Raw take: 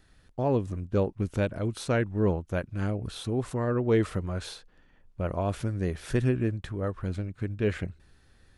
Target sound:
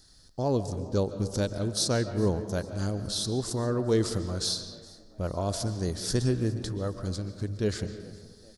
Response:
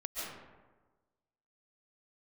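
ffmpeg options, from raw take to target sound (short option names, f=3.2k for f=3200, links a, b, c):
-filter_complex "[0:a]highshelf=f=3.5k:t=q:w=3:g=12,asplit=4[a][b][c][d];[b]adelay=411,afreqshift=63,volume=-22.5dB[e];[c]adelay=822,afreqshift=126,volume=-29.6dB[f];[d]adelay=1233,afreqshift=189,volume=-36.8dB[g];[a][e][f][g]amix=inputs=4:normalize=0,asplit=2[h][i];[1:a]atrim=start_sample=2205,lowpass=6.2k[j];[i][j]afir=irnorm=-1:irlink=0,volume=-10dB[k];[h][k]amix=inputs=2:normalize=0,volume=-2.5dB"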